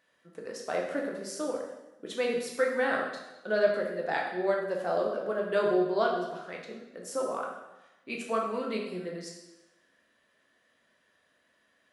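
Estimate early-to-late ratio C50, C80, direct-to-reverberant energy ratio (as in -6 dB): 3.5 dB, 6.0 dB, -1.5 dB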